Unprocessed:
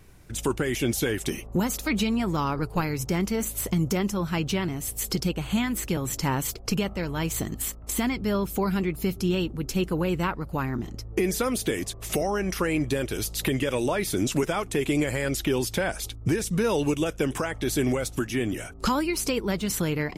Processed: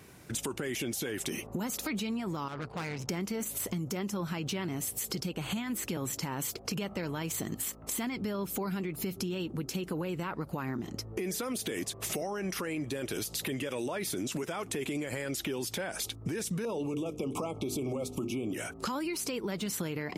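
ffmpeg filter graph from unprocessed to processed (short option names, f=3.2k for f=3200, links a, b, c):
-filter_complex "[0:a]asettb=1/sr,asplit=3[a][b][c];[a]atrim=end=2.484[d];[b]atrim=start=2.48:end=3.09,asetpts=PTS-STARTPTS,afade=t=in:d=0.004:c=qsin,afade=t=out:st=0.606:d=0.004:c=qsin,lowpass=3.7k,equalizer=f=290:t=o:w=1.4:g=-7.5,aeval=exprs='(tanh(56.2*val(0)+0.6)-tanh(0.6))/56.2':c=same[e];[c]atrim=start=3.086[f];[d][e]acrossfade=d=0.004:c1=hsin:c2=qsin[g];[g][f]acrossfade=d=0.004:c1=qsin:c2=hsin,asettb=1/sr,asplit=3[h][i][j];[h]atrim=end=16.654[k];[i]atrim=start=16.65:end=18.53,asetpts=PTS-STARTPTS,afade=t=in:d=0.004:c=qsin,afade=t=out:st=1.876:d=0.004:c=qsin,asuperstop=centerf=1700:order=20:qfactor=2,tiltshelf=f=1.4k:g=5,bandreject=f=50:t=h:w=6,bandreject=f=100:t=h:w=6,bandreject=f=150:t=h:w=6,bandreject=f=200:t=h:w=6,bandreject=f=250:t=h:w=6,bandreject=f=300:t=h:w=6,bandreject=f=350:t=h:w=6,bandreject=f=400:t=h:w=6,bandreject=f=450:t=h:w=6[l];[j]atrim=start=18.526[m];[k][l]acrossfade=d=0.004:c1=hsin:c2=qsin[n];[n][m]acrossfade=d=0.004:c1=qsin:c2=hsin,highpass=140,alimiter=limit=-23dB:level=0:latency=1:release=53,acompressor=threshold=-35dB:ratio=6,volume=3.5dB"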